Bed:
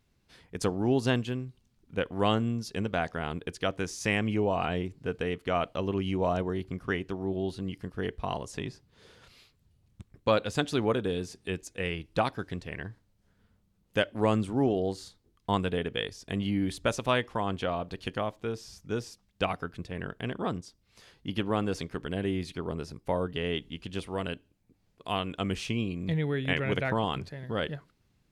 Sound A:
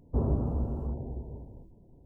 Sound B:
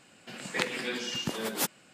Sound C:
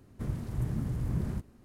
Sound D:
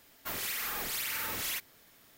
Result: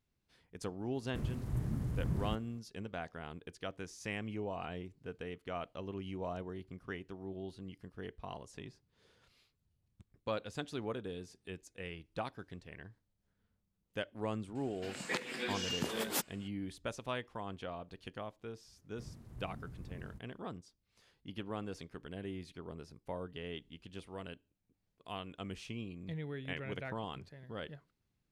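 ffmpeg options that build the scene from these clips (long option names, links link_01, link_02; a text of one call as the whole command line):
ffmpeg -i bed.wav -i cue0.wav -i cue1.wav -i cue2.wav -filter_complex "[3:a]asplit=2[link_01][link_02];[0:a]volume=-12.5dB[link_03];[2:a]alimiter=limit=-17.5dB:level=0:latency=1:release=322[link_04];[link_01]atrim=end=1.64,asetpts=PTS-STARTPTS,volume=-4dB,afade=type=in:duration=0.004:curve=hsin,afade=type=out:start_time=1.636:duration=0.004:curve=hsin,adelay=950[link_05];[link_04]atrim=end=1.93,asetpts=PTS-STARTPTS,volume=-4dB,afade=type=in:duration=0.004:curve=hsin,afade=type=out:start_time=1.926:duration=0.004:curve=hsin,adelay=14550[link_06];[link_02]atrim=end=1.64,asetpts=PTS-STARTPTS,volume=-16.5dB,afade=type=in:duration=0.004:curve=hsin,afade=type=out:start_time=1.636:duration=0.004:curve=hsin,adelay=18780[link_07];[link_03][link_05][link_06][link_07]amix=inputs=4:normalize=0" out.wav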